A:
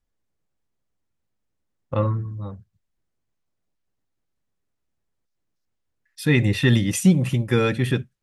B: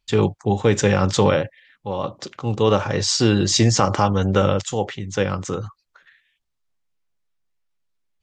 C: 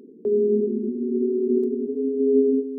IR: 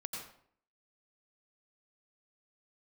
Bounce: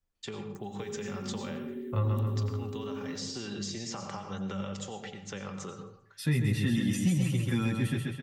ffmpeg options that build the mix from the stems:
-filter_complex "[0:a]asplit=2[link_01][link_02];[link_02]adelay=9.1,afreqshift=-2.4[link_03];[link_01][link_03]amix=inputs=2:normalize=1,volume=-1dB,asplit=2[link_04][link_05];[link_05]volume=-5dB[link_06];[1:a]aecho=1:1:5.1:0.39,acompressor=threshold=-17dB:ratio=6,adelay=150,volume=-13.5dB,asplit=3[link_07][link_08][link_09];[link_08]volume=-4dB[link_10];[link_09]volume=-22.5dB[link_11];[2:a]crystalizer=i=10:c=0,adelay=550,volume=-11dB,asplit=2[link_12][link_13];[link_13]volume=-5dB[link_14];[link_07][link_12]amix=inputs=2:normalize=0,highpass=frequency=460:poles=1,acompressor=threshold=-37dB:ratio=6,volume=0dB[link_15];[3:a]atrim=start_sample=2205[link_16];[link_10][link_14]amix=inputs=2:normalize=0[link_17];[link_17][link_16]afir=irnorm=-1:irlink=0[link_18];[link_06][link_11]amix=inputs=2:normalize=0,aecho=0:1:132|264|396|528|660|792:1|0.41|0.168|0.0689|0.0283|0.0116[link_19];[link_04][link_15][link_18][link_19]amix=inputs=4:normalize=0,acrossover=split=280|940|5600[link_20][link_21][link_22][link_23];[link_20]acompressor=threshold=-25dB:ratio=4[link_24];[link_21]acompressor=threshold=-44dB:ratio=4[link_25];[link_22]acompressor=threshold=-41dB:ratio=4[link_26];[link_23]acompressor=threshold=-45dB:ratio=4[link_27];[link_24][link_25][link_26][link_27]amix=inputs=4:normalize=0"

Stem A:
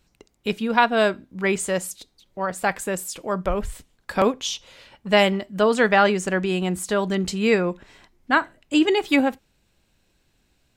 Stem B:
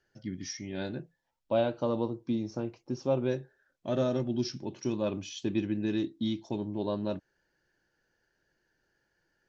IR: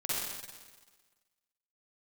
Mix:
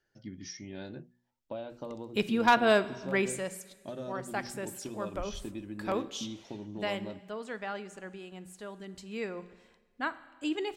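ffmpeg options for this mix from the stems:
-filter_complex "[0:a]adelay=1700,volume=1.5dB,afade=type=out:start_time=3.05:duration=0.39:silence=0.398107,afade=type=out:start_time=6.42:duration=0.73:silence=0.375837,afade=type=in:start_time=8.91:duration=0.68:silence=0.473151,asplit=2[link_01][link_02];[link_02]volume=-21dB[link_03];[1:a]acompressor=threshold=-34dB:ratio=4,bandreject=frequency=121.5:width_type=h:width=4,bandreject=frequency=243:width_type=h:width=4,bandreject=frequency=364.5:width_type=h:width=4,bandreject=frequency=486:width_type=h:width=4,volume=-3.5dB[link_04];[2:a]atrim=start_sample=2205[link_05];[link_03][link_05]afir=irnorm=-1:irlink=0[link_06];[link_01][link_04][link_06]amix=inputs=3:normalize=0,bandreject=frequency=60:width_type=h:width=6,bandreject=frequency=120:width_type=h:width=6,bandreject=frequency=180:width_type=h:width=6,asoftclip=type=hard:threshold=-14dB"

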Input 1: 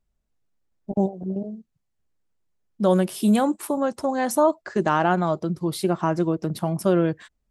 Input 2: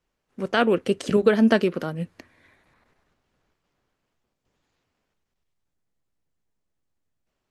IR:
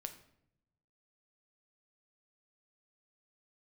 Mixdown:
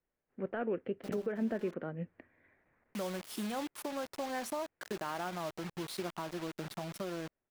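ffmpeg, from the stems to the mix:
-filter_complex "[0:a]acompressor=threshold=-28dB:ratio=3,acrusher=bits=5:mix=0:aa=0.000001,adynamicequalizer=threshold=0.00251:dfrequency=6000:dqfactor=0.7:tfrequency=6000:tqfactor=0.7:attack=5:release=100:ratio=0.375:range=3.5:mode=cutabove:tftype=highshelf,adelay=150,volume=-6dB[link_01];[1:a]deesser=0.85,lowpass=frequency=2000:width=0.5412,lowpass=frequency=2000:width=1.3066,equalizer=frequency=1100:width=1.4:gain=-8,volume=-4.5dB,asplit=2[link_02][link_03];[link_03]apad=whole_len=337624[link_04];[link_01][link_04]sidechaincompress=threshold=-25dB:ratio=8:attack=20:release=691[link_05];[link_05][link_02]amix=inputs=2:normalize=0,lowshelf=frequency=320:gain=-7.5,alimiter=level_in=2dB:limit=-24dB:level=0:latency=1:release=325,volume=-2dB"

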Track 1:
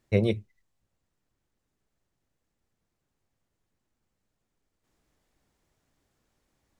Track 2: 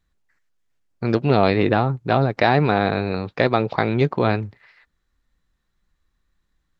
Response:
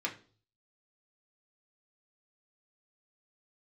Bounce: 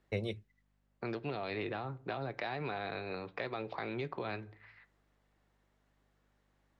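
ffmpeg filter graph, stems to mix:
-filter_complex "[0:a]bandreject=frequency=2400:width=23,volume=1dB[link_01];[1:a]highpass=frequency=90:width=0.5412,highpass=frequency=90:width=1.3066,alimiter=limit=-10.5dB:level=0:latency=1:release=23,aeval=exprs='val(0)+0.00178*(sin(2*PI*50*n/s)+sin(2*PI*2*50*n/s)/2+sin(2*PI*3*50*n/s)/3+sin(2*PI*4*50*n/s)/4+sin(2*PI*5*50*n/s)/5)':channel_layout=same,volume=-7.5dB,asplit=2[link_02][link_03];[link_03]volume=-13dB[link_04];[2:a]atrim=start_sample=2205[link_05];[link_04][link_05]afir=irnorm=-1:irlink=0[link_06];[link_01][link_02][link_06]amix=inputs=3:normalize=0,bass=frequency=250:gain=-13,treble=frequency=4000:gain=-12,acrossover=split=150|3000[link_07][link_08][link_09];[link_08]acompressor=threshold=-38dB:ratio=4[link_10];[link_07][link_10][link_09]amix=inputs=3:normalize=0"

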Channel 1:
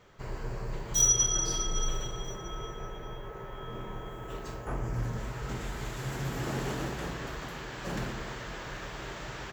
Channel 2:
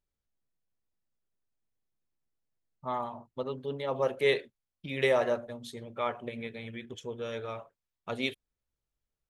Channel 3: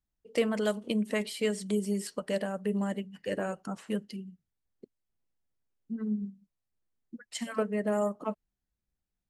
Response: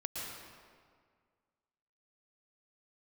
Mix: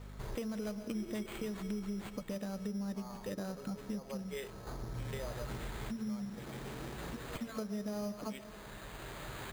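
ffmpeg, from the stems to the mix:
-filter_complex "[0:a]aeval=exprs='val(0)+0.00398*(sin(2*PI*50*n/s)+sin(2*PI*2*50*n/s)/2+sin(2*PI*3*50*n/s)/3+sin(2*PI*4*50*n/s)/4+sin(2*PI*5*50*n/s)/5)':channel_layout=same,volume=1dB[link_01];[1:a]highpass=300,adelay=100,volume=-10.5dB[link_02];[2:a]bass=frequency=250:gain=4,treble=frequency=4000:gain=3,acrusher=samples=6:mix=1:aa=0.000001,volume=-3dB,asplit=3[link_03][link_04][link_05];[link_04]volume=-14dB[link_06];[link_05]apad=whole_len=419891[link_07];[link_01][link_07]sidechaincompress=threshold=-44dB:ratio=6:attack=10:release=1100[link_08];[link_02][link_03]amix=inputs=2:normalize=0,bass=frequency=250:gain=8,treble=frequency=4000:gain=-6,acompressor=threshold=-30dB:ratio=2.5,volume=0dB[link_09];[3:a]atrim=start_sample=2205[link_10];[link_06][link_10]afir=irnorm=-1:irlink=0[link_11];[link_08][link_09][link_11]amix=inputs=3:normalize=0,acrusher=samples=8:mix=1:aa=0.000001,acompressor=threshold=-43dB:ratio=2"

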